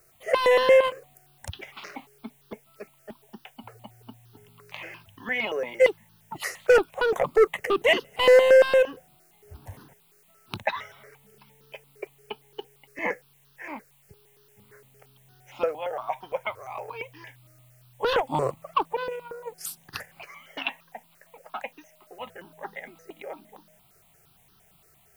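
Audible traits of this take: a quantiser's noise floor 10-bit, dither triangular; notches that jump at a steady rate 8.7 Hz 900–2200 Hz

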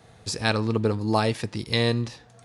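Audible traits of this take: noise floor -54 dBFS; spectral tilt -4.5 dB/oct

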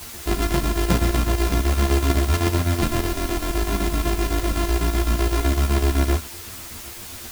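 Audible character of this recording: a buzz of ramps at a fixed pitch in blocks of 128 samples; chopped level 7.9 Hz, depth 60%, duty 65%; a quantiser's noise floor 6-bit, dither triangular; a shimmering, thickened sound

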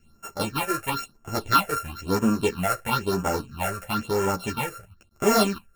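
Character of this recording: a buzz of ramps at a fixed pitch in blocks of 32 samples; phasing stages 6, 1 Hz, lowest notch 230–4000 Hz; tremolo saw down 1.8 Hz, depth 30%; a shimmering, thickened sound

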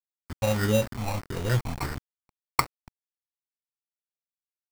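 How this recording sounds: a quantiser's noise floor 6-bit, dither none; phasing stages 6, 1.6 Hz, lowest notch 370–1100 Hz; aliases and images of a low sample rate 3300 Hz, jitter 0%

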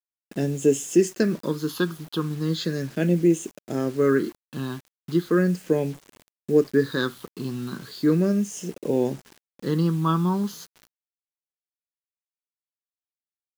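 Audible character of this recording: phasing stages 6, 0.37 Hz, lowest notch 560–1200 Hz; a quantiser's noise floor 8-bit, dither none

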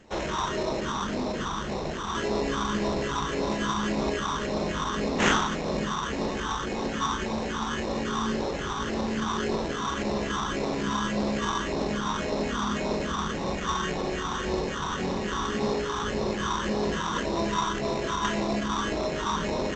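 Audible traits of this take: phasing stages 6, 1.8 Hz, lowest notch 550–1600 Hz; aliases and images of a low sample rate 4700 Hz, jitter 0%; G.722

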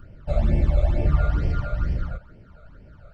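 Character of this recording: phasing stages 12, 2.2 Hz, lowest notch 290–1300 Hz

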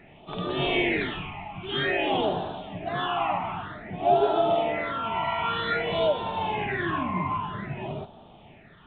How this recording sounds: phasing stages 8, 0.52 Hz, lowest notch 480–2000 Hz; A-law

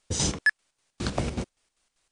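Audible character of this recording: a quantiser's noise floor 12-bit, dither triangular; chopped level 5.1 Hz, depth 60%, duty 60%; MP3

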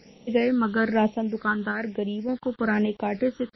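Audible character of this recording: a quantiser's noise floor 8-bit, dither none; phasing stages 8, 1.1 Hz, lowest notch 680–1500 Hz; random-step tremolo 3.5 Hz; MP3

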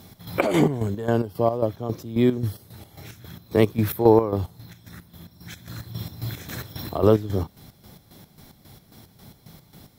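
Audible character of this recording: chopped level 3.7 Hz, depth 65%, duty 50%

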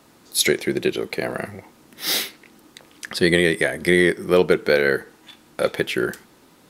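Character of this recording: noise floor -54 dBFS; spectral tilt -4.0 dB/oct

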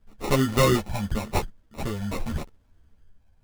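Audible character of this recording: phasing stages 8, 0.83 Hz, lowest notch 390–4900 Hz; aliases and images of a low sample rate 1600 Hz, jitter 0%; a shimmering, thickened sound

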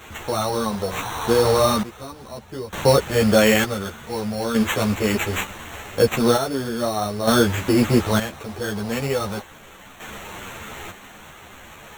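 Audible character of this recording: a quantiser's noise floor 6-bit, dither triangular; random-step tremolo 1.1 Hz, depth 90%; aliases and images of a low sample rate 4900 Hz, jitter 0%; a shimmering, thickened sound

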